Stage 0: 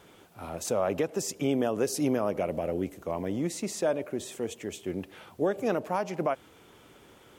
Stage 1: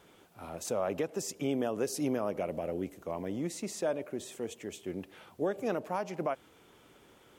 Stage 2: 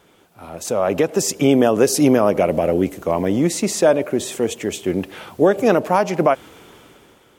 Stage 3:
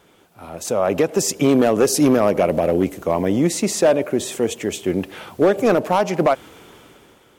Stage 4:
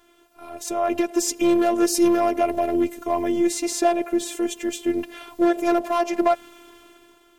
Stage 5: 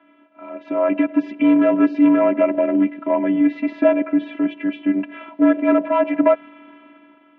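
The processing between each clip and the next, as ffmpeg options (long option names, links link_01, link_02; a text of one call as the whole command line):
ffmpeg -i in.wav -af "equalizer=frequency=88:width=1.5:gain=-2.5,volume=-4.5dB" out.wav
ffmpeg -i in.wav -af "dynaudnorm=framelen=240:gausssize=7:maxgain=12dB,volume=5.5dB" out.wav
ffmpeg -i in.wav -af "asoftclip=type=hard:threshold=-8.5dB" out.wav
ffmpeg -i in.wav -af "afftfilt=real='hypot(re,im)*cos(PI*b)':imag='0':win_size=512:overlap=0.75" out.wav
ffmpeg -i in.wav -af "highpass=frequency=230:width_type=q:width=0.5412,highpass=frequency=230:width_type=q:width=1.307,lowpass=frequency=2700:width_type=q:width=0.5176,lowpass=frequency=2700:width_type=q:width=0.7071,lowpass=frequency=2700:width_type=q:width=1.932,afreqshift=-54,volume=4.5dB" out.wav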